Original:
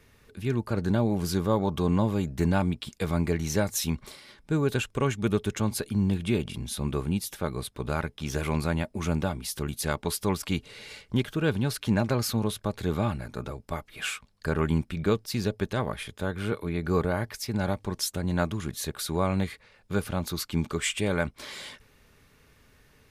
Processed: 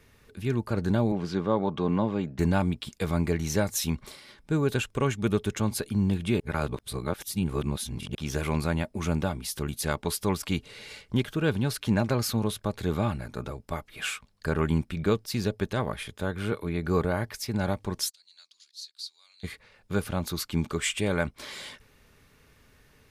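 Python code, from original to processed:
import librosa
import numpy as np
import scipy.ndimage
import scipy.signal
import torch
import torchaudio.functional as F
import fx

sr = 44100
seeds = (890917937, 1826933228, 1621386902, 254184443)

y = fx.bandpass_edges(x, sr, low_hz=150.0, high_hz=3400.0, at=(1.12, 2.39))
y = fx.ladder_bandpass(y, sr, hz=4800.0, resonance_pct=75, at=(18.09, 19.43), fade=0.02)
y = fx.edit(y, sr, fx.reverse_span(start_s=6.4, length_s=1.75), tone=tone)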